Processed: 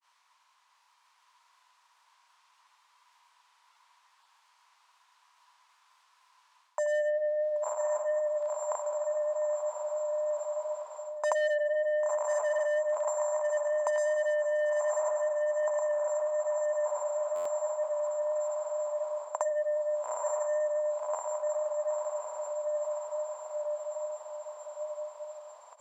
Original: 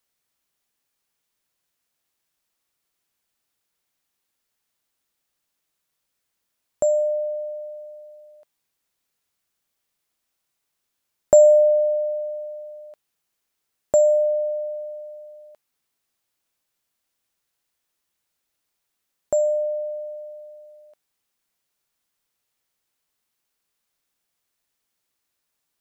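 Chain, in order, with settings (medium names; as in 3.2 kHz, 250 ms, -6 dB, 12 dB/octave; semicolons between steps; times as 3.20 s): treble shelf 4.1 kHz +10 dB; on a send: echo that smears into a reverb 1056 ms, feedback 67%, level -3.5 dB; on the sum: granulator 131 ms, grains 20 per s, pitch spread up and down by 0 st; overdrive pedal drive 20 dB, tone 2.6 kHz, clips at -5.5 dBFS; distance through air 66 m; reverse; compression 5:1, threshold -24 dBFS, peak gain reduction 12.5 dB; reverse; resonant high-pass 990 Hz, resonance Q 10; buffer glitch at 17.35 s, samples 512, times 8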